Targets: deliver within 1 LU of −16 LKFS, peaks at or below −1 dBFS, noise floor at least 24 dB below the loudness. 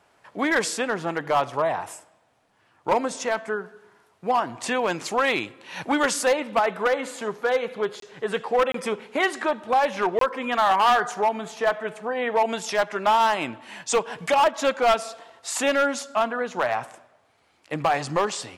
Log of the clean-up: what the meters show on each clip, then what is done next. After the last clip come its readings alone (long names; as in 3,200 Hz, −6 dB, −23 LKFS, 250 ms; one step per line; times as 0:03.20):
share of clipped samples 1.4%; peaks flattened at −14.5 dBFS; number of dropouts 3; longest dropout 23 ms; integrated loudness −24.0 LKFS; sample peak −14.5 dBFS; target loudness −16.0 LKFS
→ clipped peaks rebuilt −14.5 dBFS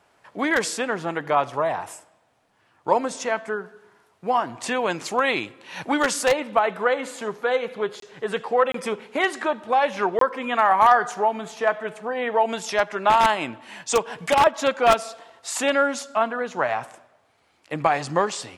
share of clipped samples 0.0%; number of dropouts 3; longest dropout 23 ms
→ repair the gap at 0:08.00/0:08.72/0:10.19, 23 ms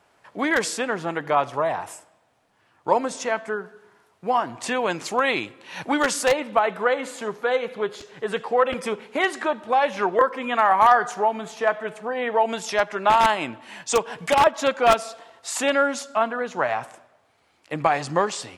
number of dropouts 0; integrated loudness −23.0 LKFS; sample peak −5.0 dBFS; target loudness −16.0 LKFS
→ level +7 dB
brickwall limiter −1 dBFS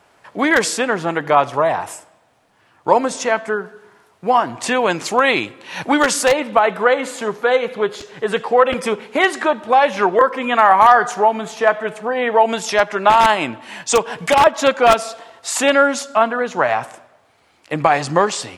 integrated loudness −16.5 LKFS; sample peak −1.0 dBFS; background noise floor −56 dBFS